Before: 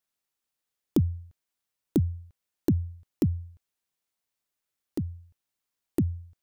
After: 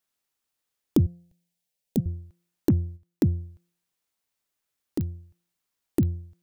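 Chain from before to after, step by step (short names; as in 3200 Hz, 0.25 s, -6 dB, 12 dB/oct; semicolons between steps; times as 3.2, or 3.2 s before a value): de-hum 173.3 Hz, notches 4; 1.06–2.06 fixed phaser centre 320 Hz, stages 6; 2.7–3.33 gate -41 dBFS, range -9 dB; pops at 5.01/6.03, -23 dBFS; gain +3 dB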